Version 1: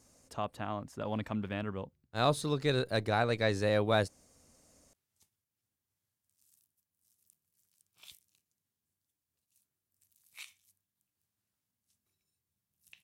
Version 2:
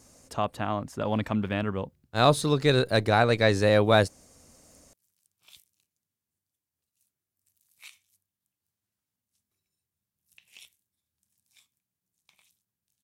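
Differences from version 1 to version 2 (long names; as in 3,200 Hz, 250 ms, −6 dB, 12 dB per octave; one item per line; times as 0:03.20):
speech +8.0 dB
background: entry −2.55 s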